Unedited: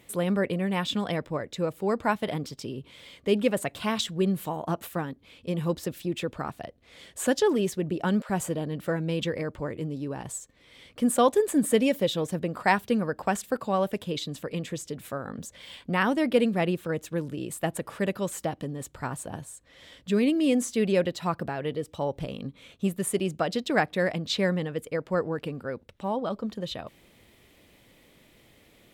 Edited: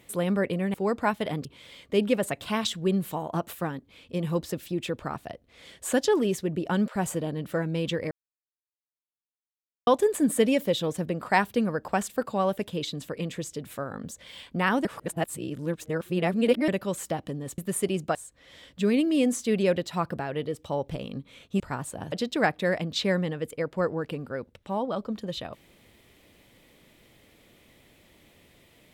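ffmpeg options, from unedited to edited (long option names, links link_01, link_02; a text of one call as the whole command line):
ffmpeg -i in.wav -filter_complex "[0:a]asplit=11[link_01][link_02][link_03][link_04][link_05][link_06][link_07][link_08][link_09][link_10][link_11];[link_01]atrim=end=0.742[link_12];[link_02]atrim=start=1.758:end=2.472[link_13];[link_03]atrim=start=2.788:end=9.45,asetpts=PTS-STARTPTS,afade=type=out:start_time=6.658:duration=0.004:curve=hsin[link_14];[link_04]atrim=start=9.45:end=11.21,asetpts=PTS-STARTPTS,volume=0[link_15];[link_05]atrim=start=11.21:end=16.192,asetpts=PTS-STARTPTS,afade=type=in:duration=0.004:curve=hsin[link_16];[link_06]atrim=start=16.188:end=18.022,asetpts=PTS-STARTPTS,areverse[link_17];[link_07]atrim=start=18.018:end=18.922[link_18];[link_08]atrim=start=22.888:end=23.462[link_19];[link_09]atrim=start=19.438:end=22.892[link_20];[link_10]atrim=start=18.918:end=19.442[link_21];[link_11]atrim=start=23.458[link_22];[link_12][link_13]acrossfade=duration=0.004:curve1=hsin:curve2=hsin[link_23];[link_14][link_15][link_16]concat=n=3:v=0:a=1[link_24];[link_23][link_24]acrossfade=duration=0.004:curve1=hsin:curve2=hsin[link_25];[link_25][link_17]acrossfade=duration=0.004:curve1=hsin:curve2=hsin[link_26];[link_26][link_18]acrossfade=duration=0.004:curve1=hsin:curve2=hsin[link_27];[link_27][link_19]acrossfade=duration=0.004:curve1=hsin:curve2=hsin[link_28];[link_28][link_20]acrossfade=duration=0.004:curve1=hsin:curve2=hsin[link_29];[link_29][link_21]acrossfade=duration=0.004:curve1=hsin:curve2=hsin[link_30];[link_30][link_22]acrossfade=duration=0.004:curve1=hsin:curve2=hsin" out.wav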